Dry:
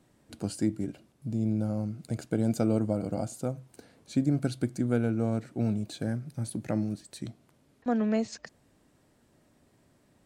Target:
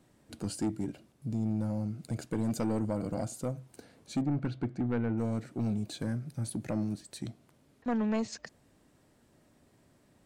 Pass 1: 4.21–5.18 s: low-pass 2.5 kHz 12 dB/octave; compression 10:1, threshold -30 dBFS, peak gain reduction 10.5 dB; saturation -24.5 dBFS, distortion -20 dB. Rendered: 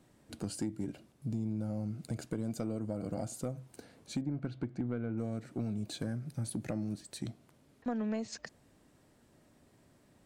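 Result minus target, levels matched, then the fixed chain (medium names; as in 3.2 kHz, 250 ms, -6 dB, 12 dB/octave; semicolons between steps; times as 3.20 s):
compression: peak gain reduction +10.5 dB
4.21–5.18 s: low-pass 2.5 kHz 12 dB/octave; saturation -24.5 dBFS, distortion -11 dB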